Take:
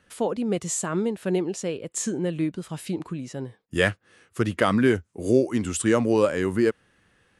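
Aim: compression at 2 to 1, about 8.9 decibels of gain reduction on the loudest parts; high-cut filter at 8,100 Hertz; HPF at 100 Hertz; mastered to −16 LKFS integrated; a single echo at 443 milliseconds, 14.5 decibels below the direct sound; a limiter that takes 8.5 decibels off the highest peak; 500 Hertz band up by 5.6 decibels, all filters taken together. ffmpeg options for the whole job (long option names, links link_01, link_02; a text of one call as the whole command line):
ffmpeg -i in.wav -af "highpass=100,lowpass=8100,equalizer=frequency=500:width_type=o:gain=7,acompressor=threshold=-26dB:ratio=2,alimiter=limit=-17dB:level=0:latency=1,aecho=1:1:443:0.188,volume=13dB" out.wav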